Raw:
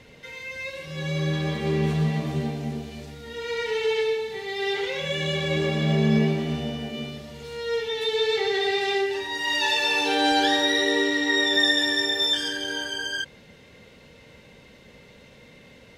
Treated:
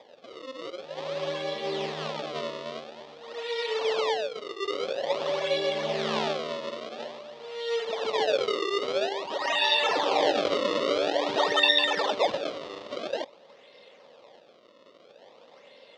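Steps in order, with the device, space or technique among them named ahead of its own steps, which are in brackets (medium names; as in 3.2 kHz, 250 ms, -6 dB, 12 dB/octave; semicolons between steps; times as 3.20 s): circuit-bent sampling toy (decimation with a swept rate 31×, swing 160% 0.49 Hz; cabinet simulation 530–4900 Hz, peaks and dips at 560 Hz +7 dB, 1.5 kHz -9 dB, 2.2 kHz -4 dB, 3.5 kHz +4 dB); 6.49–7.24 s: high-pass 150 Hz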